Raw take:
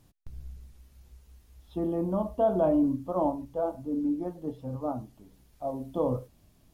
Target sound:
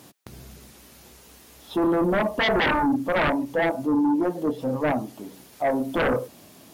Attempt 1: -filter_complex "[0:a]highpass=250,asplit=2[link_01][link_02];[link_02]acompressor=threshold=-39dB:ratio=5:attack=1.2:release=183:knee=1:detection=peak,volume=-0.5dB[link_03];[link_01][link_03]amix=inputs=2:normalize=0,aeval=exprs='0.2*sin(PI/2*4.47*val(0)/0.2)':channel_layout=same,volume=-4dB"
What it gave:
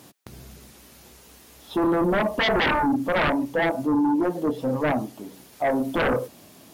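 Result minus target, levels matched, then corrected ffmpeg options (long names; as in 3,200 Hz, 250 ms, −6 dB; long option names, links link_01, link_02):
downward compressor: peak gain reduction −6.5 dB
-filter_complex "[0:a]highpass=250,asplit=2[link_01][link_02];[link_02]acompressor=threshold=-47dB:ratio=5:attack=1.2:release=183:knee=1:detection=peak,volume=-0.5dB[link_03];[link_01][link_03]amix=inputs=2:normalize=0,aeval=exprs='0.2*sin(PI/2*4.47*val(0)/0.2)':channel_layout=same,volume=-4dB"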